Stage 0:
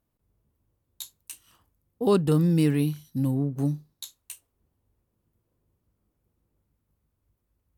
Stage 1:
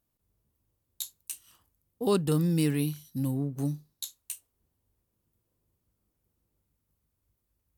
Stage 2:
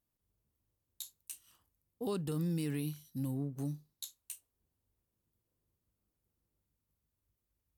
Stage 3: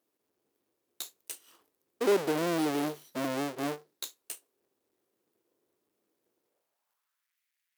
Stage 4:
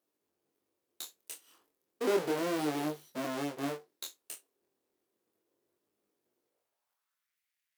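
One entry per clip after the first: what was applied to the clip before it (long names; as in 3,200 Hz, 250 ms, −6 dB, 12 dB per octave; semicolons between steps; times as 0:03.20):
high-shelf EQ 3,200 Hz +8.5 dB; level −4.5 dB
brickwall limiter −21 dBFS, peak gain reduction 6.5 dB; level −6.5 dB
each half-wave held at its own peak; high-pass filter sweep 370 Hz → 2,000 Hz, 0:06.36–0:07.37; level +2.5 dB
chorus effect 0.33 Hz, delay 19.5 ms, depth 5.5 ms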